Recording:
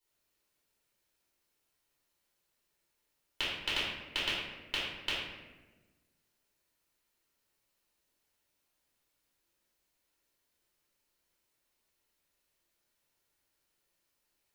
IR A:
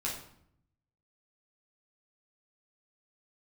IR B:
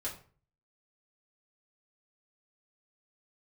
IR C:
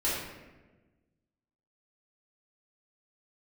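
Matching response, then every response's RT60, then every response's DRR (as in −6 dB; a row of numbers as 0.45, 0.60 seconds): C; 0.65, 0.40, 1.2 seconds; −4.5, −6.0, −9.5 decibels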